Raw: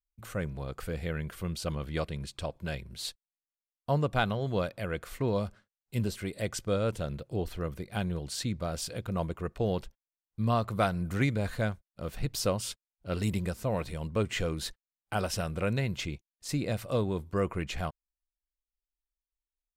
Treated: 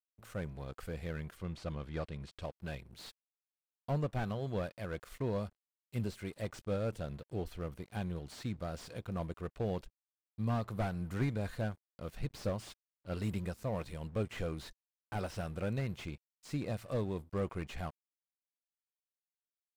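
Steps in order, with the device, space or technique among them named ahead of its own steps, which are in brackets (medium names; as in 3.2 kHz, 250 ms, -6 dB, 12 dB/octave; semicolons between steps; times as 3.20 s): early transistor amplifier (crossover distortion -53 dBFS; slew-rate limiter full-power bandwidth 32 Hz); 1.37–2.42 s: distance through air 50 m; trim -5.5 dB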